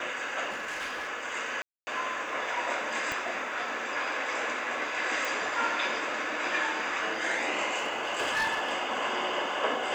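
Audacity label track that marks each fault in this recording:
0.500000	1.090000	clipped -31 dBFS
1.620000	1.870000	gap 0.25 s
3.120000	3.120000	pop -17 dBFS
5.250000	5.250000	pop
7.770000	8.730000	clipped -24.5 dBFS

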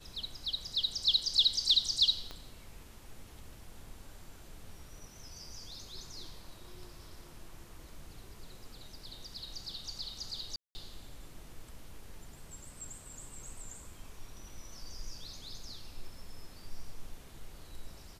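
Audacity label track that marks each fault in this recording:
2.310000	2.310000	pop -27 dBFS
10.560000	10.750000	gap 0.19 s

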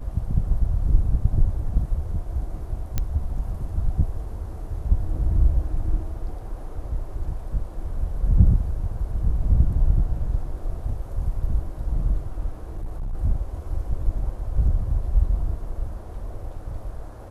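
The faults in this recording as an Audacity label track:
2.980000	2.980000	pop -10 dBFS
12.760000	13.150000	clipped -25.5 dBFS

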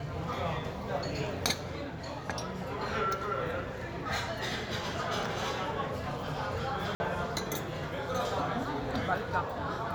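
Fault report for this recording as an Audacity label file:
6.950000	7.000000	gap 50 ms

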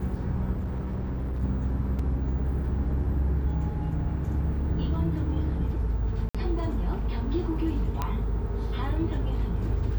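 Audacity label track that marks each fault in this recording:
0.530000	1.430000	clipped -27 dBFS
1.990000	1.990000	gap 3.9 ms
6.290000	6.350000	gap 56 ms
8.020000	8.020000	pop -15 dBFS

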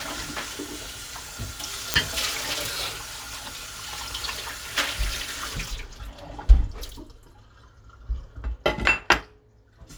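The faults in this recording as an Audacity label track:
1.940000	1.940000	pop -2 dBFS

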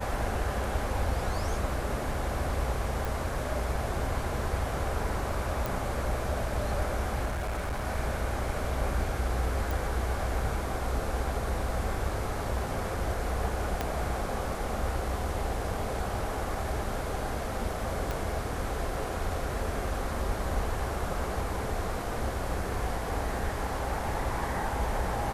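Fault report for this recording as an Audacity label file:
3.050000	3.050000	pop
5.660000	5.660000	pop
7.250000	7.870000	clipped -28.5 dBFS
9.710000	9.710000	pop
13.810000	13.810000	pop -14 dBFS
18.110000	18.110000	pop

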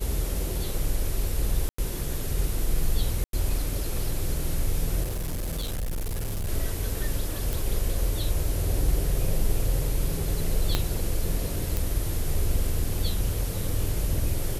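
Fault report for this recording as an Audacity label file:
1.690000	1.780000	gap 94 ms
3.240000	3.330000	gap 92 ms
5.030000	6.490000	clipped -26 dBFS
7.530000	7.530000	pop
10.750000	10.750000	pop -8 dBFS
11.770000	11.770000	pop

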